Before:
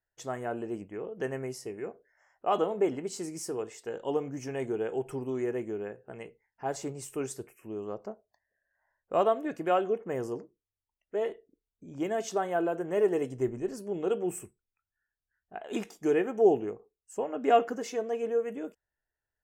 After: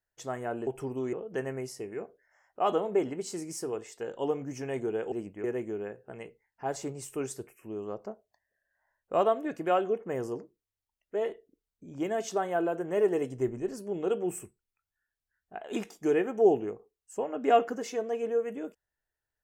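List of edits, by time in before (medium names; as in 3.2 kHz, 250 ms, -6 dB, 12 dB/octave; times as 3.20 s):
0.67–0.99 s: swap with 4.98–5.44 s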